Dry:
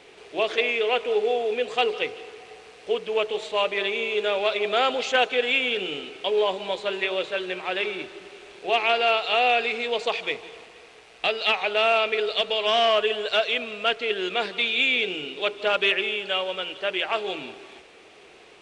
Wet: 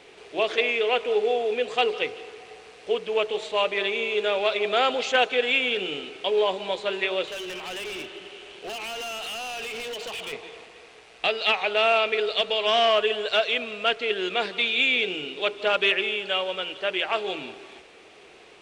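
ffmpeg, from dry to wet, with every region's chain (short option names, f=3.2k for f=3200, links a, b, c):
-filter_complex "[0:a]asettb=1/sr,asplit=3[a][b][c];[a]atrim=end=7.274[d];[b]atrim=start=7.27:end=10.33,asetpts=PTS-STARTPTS,afade=t=in:d=0.004:c=qsin,afade=t=out:st=3.056:d=0.004:c=qsin,equalizer=f=3k:w=7.1:g=11,acompressor=threshold=-24dB:ratio=6:attack=3.2:release=140:knee=1:detection=peak,volume=31.5dB,asoftclip=hard,volume=-31.5dB[e];[c]atrim=start=10.326[f];[d][e]acrossfade=d=0.004:c1=hsin:c2=qsin[g];[g][f]acrossfade=d=0.004:c1=qsin:c2=hsin"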